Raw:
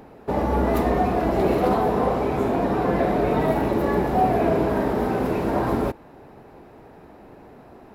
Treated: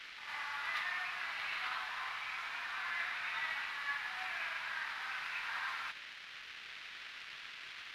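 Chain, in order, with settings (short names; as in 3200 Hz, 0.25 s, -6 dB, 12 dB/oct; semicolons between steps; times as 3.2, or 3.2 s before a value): delta modulation 64 kbps, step -35 dBFS; Bessel high-pass 2500 Hz, order 6; in parallel at -2.5 dB: vocal rider within 5 dB 2 s; on the sum: crossover distortion -58 dBFS; short-mantissa float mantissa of 2-bit; air absorption 330 m; on a send: reverse echo 0.113 s -8.5 dB; on the sum: gain +3.5 dB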